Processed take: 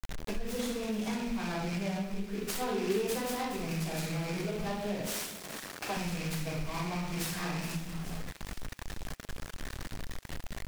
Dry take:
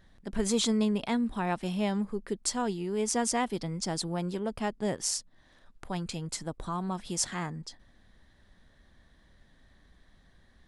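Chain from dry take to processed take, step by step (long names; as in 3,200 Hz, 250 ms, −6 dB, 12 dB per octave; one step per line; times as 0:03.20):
loose part that buzzes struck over −43 dBFS, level −28 dBFS
rectangular room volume 240 cubic metres, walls mixed, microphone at 5.2 metres
pitch vibrato 0.4 Hz 88 cents
0:00.99–0:01.47: high-shelf EQ 4,000 Hz +9.5 dB
bit-depth reduction 6 bits, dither none
0:05.07–0:05.97: high-pass filter 280 Hz 12 dB per octave
downward compressor 6 to 1, threshold −31 dBFS, peak gain reduction 22 dB
0:02.61–0:03.15: parametric band 390 Hz +9 dB 0.39 octaves
delay with a high-pass on its return 420 ms, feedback 57%, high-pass 3,200 Hz, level −10.5 dB
short delay modulated by noise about 2,400 Hz, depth 0.048 ms
level −2 dB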